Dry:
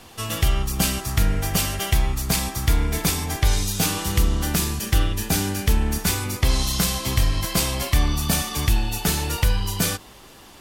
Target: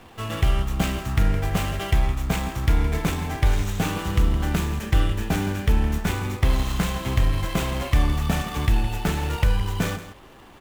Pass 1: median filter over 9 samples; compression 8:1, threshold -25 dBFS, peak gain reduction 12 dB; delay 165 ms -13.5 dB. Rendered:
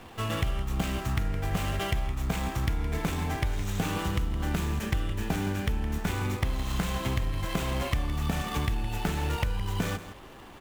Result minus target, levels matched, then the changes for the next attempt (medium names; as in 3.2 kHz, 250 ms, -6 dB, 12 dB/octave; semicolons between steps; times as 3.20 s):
compression: peak gain reduction +12 dB
remove: compression 8:1, threshold -25 dBFS, peak gain reduction 12 dB